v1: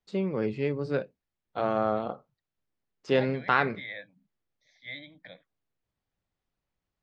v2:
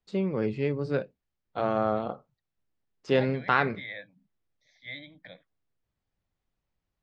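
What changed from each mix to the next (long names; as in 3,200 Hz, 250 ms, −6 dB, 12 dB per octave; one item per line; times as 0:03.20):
master: add low-shelf EQ 120 Hz +5 dB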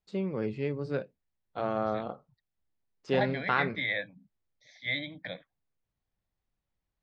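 first voice −4.0 dB
second voice +8.5 dB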